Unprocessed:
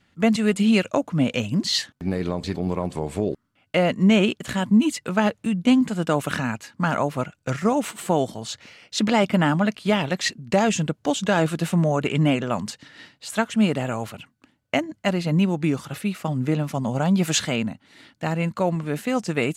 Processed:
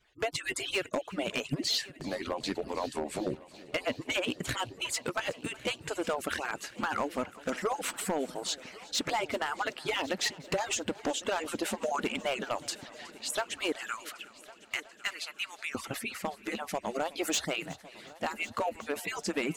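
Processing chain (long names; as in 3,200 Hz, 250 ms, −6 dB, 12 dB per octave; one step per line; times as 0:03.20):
harmonic-percussive split with one part muted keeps percussive
0:13.72–0:15.75: Chebyshev high-pass filter 1,300 Hz, order 3
downward compressor 4 to 1, threshold −27 dBFS, peak gain reduction 9.5 dB
hard clipping −23.5 dBFS, distortion −15 dB
echo machine with several playback heads 368 ms, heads first and third, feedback 60%, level −21 dB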